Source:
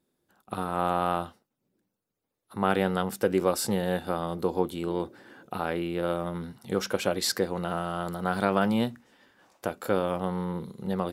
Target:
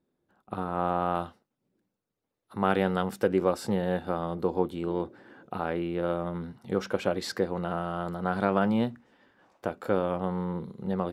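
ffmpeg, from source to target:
-af "asetnsamples=n=441:p=0,asendcmd='1.15 lowpass f 3800;3.28 lowpass f 1900',lowpass=f=1.4k:p=1"

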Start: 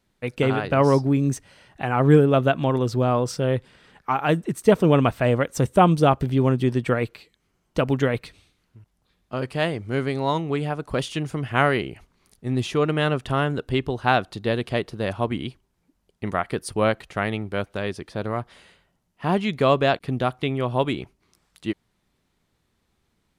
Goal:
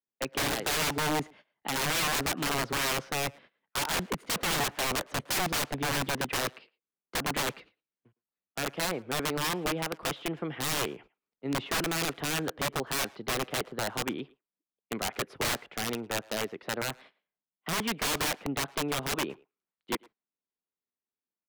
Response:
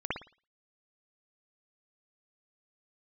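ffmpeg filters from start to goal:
-filter_complex "[0:a]agate=range=-25dB:threshold=-46dB:ratio=16:detection=peak,acrossover=split=180 3500:gain=0.112 1 0.0631[a][b][c];[a][b][c]amix=inputs=3:normalize=0,acrossover=split=140|3100[d][e][f];[f]acompressor=threshold=-54dB:ratio=12[g];[d][e][g]amix=inputs=3:normalize=0,aeval=exprs='(mod(10.6*val(0)+1,2)-1)/10.6':c=same,asplit=2[h][i];[i]adelay=120,highpass=300,lowpass=3.4k,asoftclip=type=hard:threshold=-29dB,volume=-21dB[j];[h][j]amix=inputs=2:normalize=0,asetrate=48000,aresample=44100,volume=-3dB"

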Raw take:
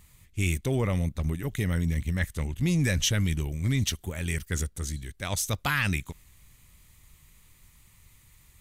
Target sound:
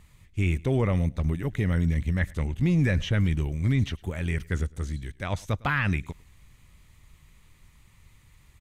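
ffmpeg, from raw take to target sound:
-filter_complex "[0:a]aemphasis=mode=reproduction:type=50kf,acrossover=split=2800[a][b];[b]acompressor=threshold=-48dB:ratio=4:attack=1:release=60[c];[a][c]amix=inputs=2:normalize=0,aecho=1:1:105:0.0631,volume=2.5dB"

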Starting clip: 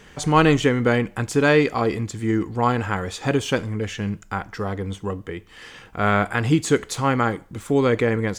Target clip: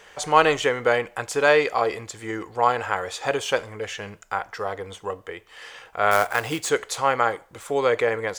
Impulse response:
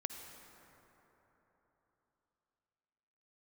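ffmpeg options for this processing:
-filter_complex "[0:a]lowshelf=f=370:t=q:w=1.5:g=-13.5,asettb=1/sr,asplit=3[a][b][c];[a]atrim=end=6.114[d];[b]atrim=start=6.11:end=6.7,asetpts=PTS-STARTPTS,afade=t=in:d=0.004:c=qsin,afade=t=out:st=0.586:d=0.004:c=qsin,acrusher=bits=3:mode=log:mix=0:aa=0.000001[e];[c]atrim=start=6.696[f];[d][e]acrossfade=d=0.004:c1=hsin:c2=qsin[g];[g][f]acrossfade=d=0.004:c1=qsin:c2=hsin"

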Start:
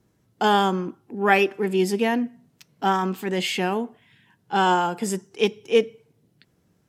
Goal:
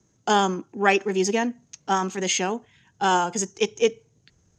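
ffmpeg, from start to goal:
-filter_complex "[0:a]acrossover=split=120|1000|1800[a][b][c][d];[a]alimiter=level_in=22.5dB:limit=-24dB:level=0:latency=1:release=153,volume=-22.5dB[e];[e][b][c][d]amix=inputs=4:normalize=0,atempo=1.5,asubboost=boost=5.5:cutoff=86,lowpass=f=6.5k:t=q:w=13,highshelf=f=5k:g=-5.5"

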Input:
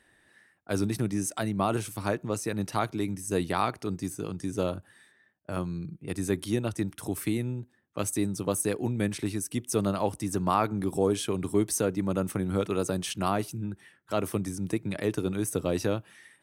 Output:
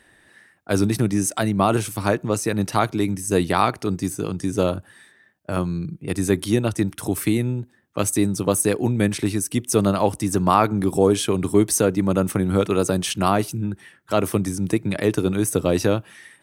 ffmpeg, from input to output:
-af "volume=8.5dB"

